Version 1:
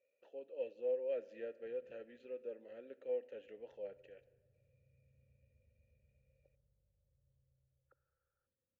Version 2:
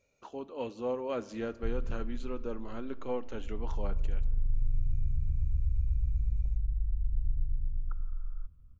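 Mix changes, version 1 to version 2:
background: remove high-pass 110 Hz 12 dB/octave; master: remove vowel filter e

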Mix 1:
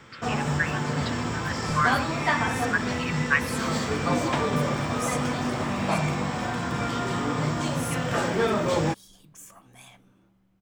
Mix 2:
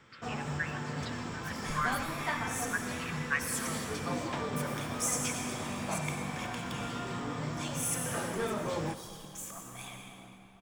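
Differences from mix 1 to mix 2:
speech -10.0 dB; first sound -11.0 dB; reverb: on, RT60 2.9 s

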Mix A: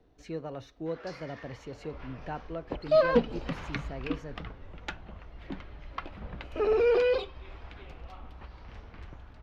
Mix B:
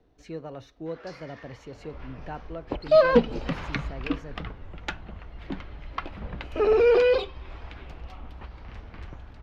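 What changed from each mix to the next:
second sound +5.0 dB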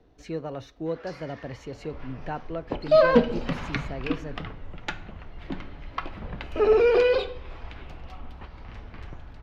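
speech +4.5 dB; reverb: on, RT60 0.65 s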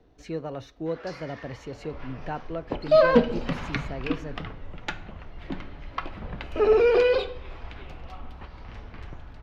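first sound +3.0 dB

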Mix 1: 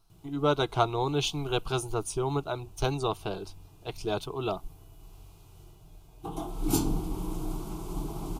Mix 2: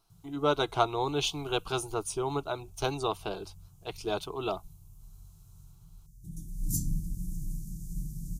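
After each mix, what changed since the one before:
speech: add bass shelf 170 Hz -10 dB; background: add elliptic band-stop 180–6200 Hz, stop band 50 dB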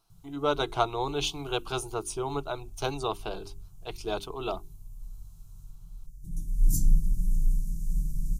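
speech: add hum notches 50/100/150/200/250/300/350/400 Hz; background: remove high-pass 59 Hz 12 dB/octave

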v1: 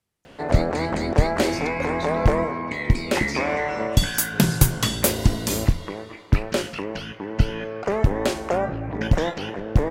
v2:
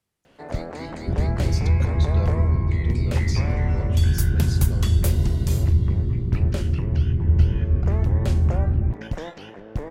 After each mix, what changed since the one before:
first sound -10.0 dB; second sound: unmuted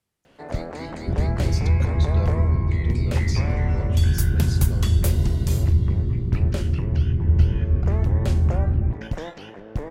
first sound: send on

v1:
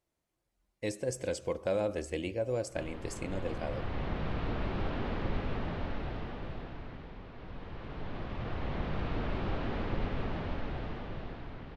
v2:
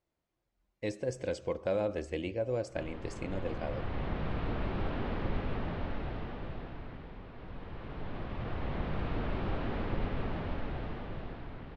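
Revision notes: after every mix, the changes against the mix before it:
master: add distance through air 94 m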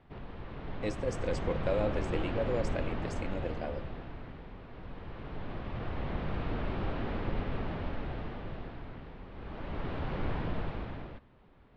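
background: entry -2.65 s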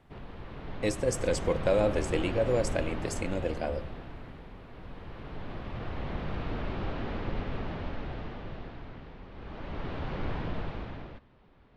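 speech +5.5 dB; master: remove distance through air 94 m

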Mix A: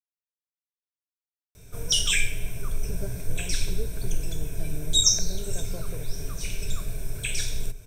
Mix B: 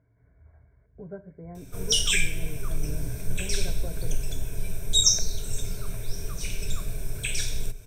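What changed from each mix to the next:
speech: entry -1.90 s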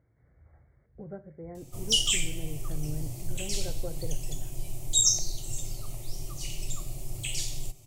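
background: add static phaser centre 310 Hz, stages 8; master: remove rippled EQ curve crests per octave 1.6, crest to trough 11 dB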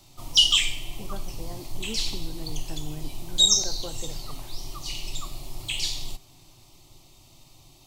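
background: entry -1.55 s; master: add ten-band graphic EQ 125 Hz -6 dB, 250 Hz +6 dB, 500 Hz -5 dB, 1 kHz +12 dB, 4 kHz +12 dB, 8 kHz -5 dB

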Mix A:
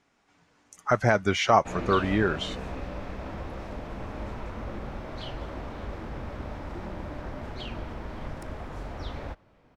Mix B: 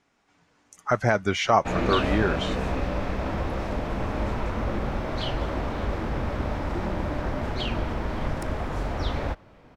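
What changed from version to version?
background +8.5 dB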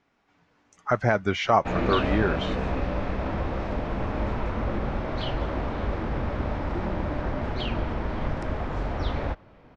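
master: add distance through air 120 m

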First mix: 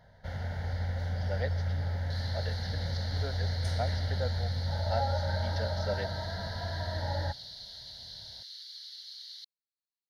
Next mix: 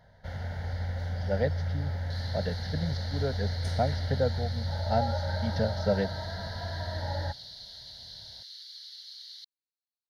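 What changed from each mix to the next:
speech: remove high-pass 1.2 kHz 6 dB/octave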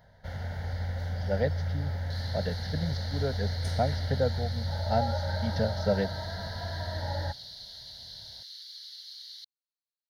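master: add treble shelf 12 kHz +9.5 dB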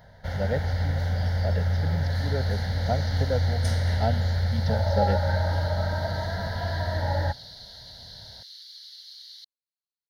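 speech: entry -0.90 s; first sound +7.0 dB

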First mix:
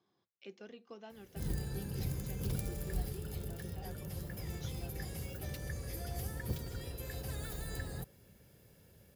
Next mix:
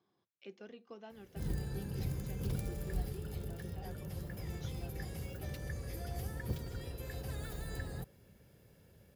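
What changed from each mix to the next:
master: add treble shelf 4.3 kHz -6 dB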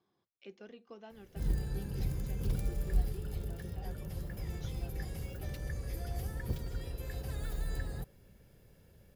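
master: remove high-pass 70 Hz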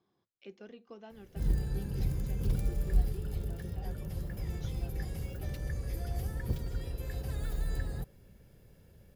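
master: add bass shelf 400 Hz +3 dB

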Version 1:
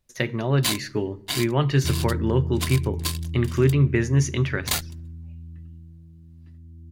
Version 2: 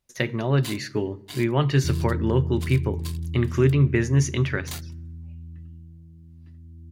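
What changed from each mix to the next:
first sound -12.0 dB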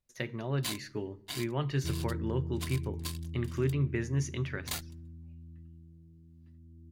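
speech -11.0 dB; second sound: add peaking EQ 95 Hz -10 dB 2.8 oct

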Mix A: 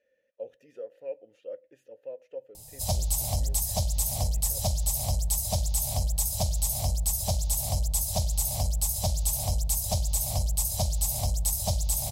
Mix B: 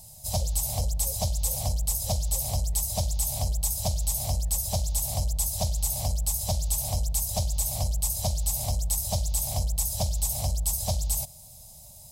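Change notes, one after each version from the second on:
speech -10.0 dB; background: entry -2.55 s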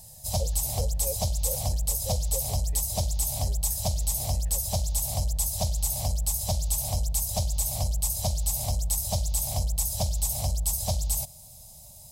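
speech +10.5 dB

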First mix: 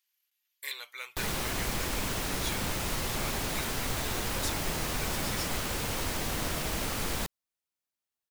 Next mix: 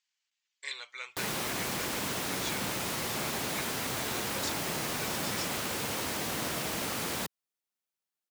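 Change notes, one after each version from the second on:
speech: add Chebyshev low-pass 8.2 kHz, order 8; background: add high-pass 140 Hz 12 dB/octave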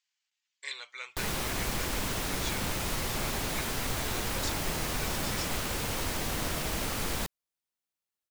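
background: remove high-pass 140 Hz 12 dB/octave

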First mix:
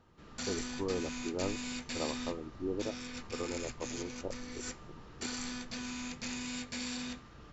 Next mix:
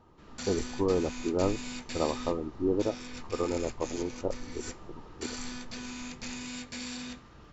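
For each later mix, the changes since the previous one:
speech +8.5 dB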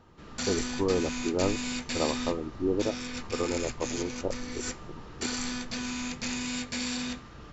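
background +6.5 dB

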